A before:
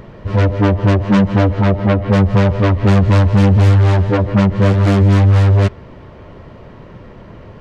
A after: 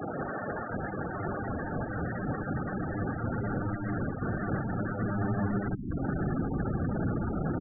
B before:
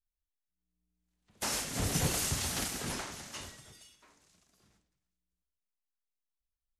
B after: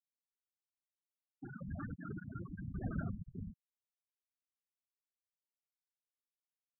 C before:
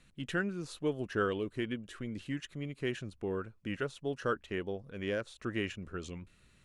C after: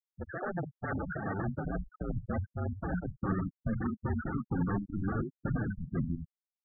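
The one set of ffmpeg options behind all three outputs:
-af "aecho=1:1:25|71:0.282|0.237,acompressor=threshold=-28dB:ratio=4,aeval=exprs='(mod(42.2*val(0)+1,2)-1)/42.2':c=same,bandreject=f=1.2k:w=6,highpass=f=330:t=q:w=0.5412,highpass=f=330:t=q:w=1.307,lowpass=f=2k:t=q:w=0.5176,lowpass=f=2k:t=q:w=0.7071,lowpass=f=2k:t=q:w=1.932,afreqshift=-190,bandreject=f=212.6:t=h:w=4,bandreject=f=425.2:t=h:w=4,bandreject=f=637.8:t=h:w=4,bandreject=f=850.4:t=h:w=4,bandreject=f=1.063k:t=h:w=4,bandreject=f=1.2756k:t=h:w=4,bandreject=f=1.4882k:t=h:w=4,bandreject=f=1.7008k:t=h:w=4,bandreject=f=1.9134k:t=h:w=4,bandreject=f=2.126k:t=h:w=4,bandreject=f=2.3386k:t=h:w=4,bandreject=f=2.5512k:t=h:w=4,bandreject=f=2.7638k:t=h:w=4,bandreject=f=2.9764k:t=h:w=4,bandreject=f=3.189k:t=h:w=4,bandreject=f=3.4016k:t=h:w=4,bandreject=f=3.6142k:t=h:w=4,bandreject=f=3.8268k:t=h:w=4,bandreject=f=4.0394k:t=h:w=4,bandreject=f=4.252k:t=h:w=4,bandreject=f=4.4646k:t=h:w=4,bandreject=f=4.6772k:t=h:w=4,bandreject=f=4.8898k:t=h:w=4,bandreject=f=5.1024k:t=h:w=4,bandreject=f=5.315k:t=h:w=4,bandreject=f=5.5276k:t=h:w=4,bandreject=f=5.7402k:t=h:w=4,bandreject=f=5.9528k:t=h:w=4,asubboost=boost=5:cutoff=220,afftfilt=real='re*gte(hypot(re,im),0.0178)':imag='im*gte(hypot(re,im),0.0178)':win_size=1024:overlap=0.75,volume=8dB"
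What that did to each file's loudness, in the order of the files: -20.0, -11.0, +1.5 LU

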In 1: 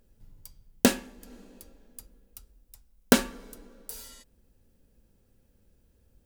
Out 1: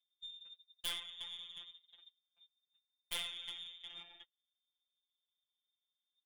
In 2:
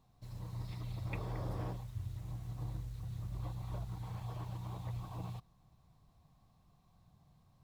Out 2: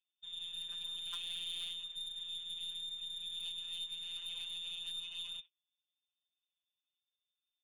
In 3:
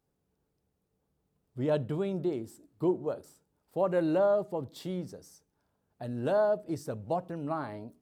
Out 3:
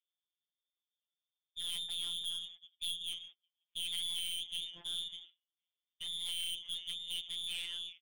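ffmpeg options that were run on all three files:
-filter_complex "[0:a]aeval=exprs='val(0)*sin(2*PI*53*n/s)':c=same,highpass=43,asplit=2[a][b];[b]acompressor=threshold=-40dB:ratio=6,volume=-2.5dB[c];[a][c]amix=inputs=2:normalize=0,lowpass=f=3.1k:t=q:w=0.5098,lowpass=f=3.1k:t=q:w=0.6013,lowpass=f=3.1k:t=q:w=0.9,lowpass=f=3.1k:t=q:w=2.563,afreqshift=-3700,acompressor=mode=upward:threshold=-50dB:ratio=2.5,asplit=2[d][e];[e]asplit=3[f][g][h];[f]adelay=359,afreqshift=-55,volume=-23.5dB[i];[g]adelay=718,afreqshift=-110,volume=-29.5dB[j];[h]adelay=1077,afreqshift=-165,volume=-35.5dB[k];[i][j][k]amix=inputs=3:normalize=0[l];[d][l]amix=inputs=2:normalize=0,agate=range=-34dB:threshold=-50dB:ratio=16:detection=peak,flanger=delay=1.2:depth=7.2:regen=19:speed=0.93:shape=triangular,aeval=exprs='(tanh(100*val(0)+0.15)-tanh(0.15))/100':c=same,afftfilt=real='hypot(re,im)*cos(PI*b)':imag='0':win_size=1024:overlap=0.75,equalizer=f=1.2k:w=0.33:g=-4,volume=9dB"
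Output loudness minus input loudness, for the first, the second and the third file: -17.0, +3.0, -6.5 LU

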